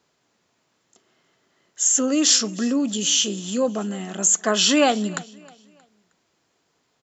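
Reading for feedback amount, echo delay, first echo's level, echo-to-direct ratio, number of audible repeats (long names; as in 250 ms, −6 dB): 36%, 314 ms, −22.0 dB, −21.5 dB, 2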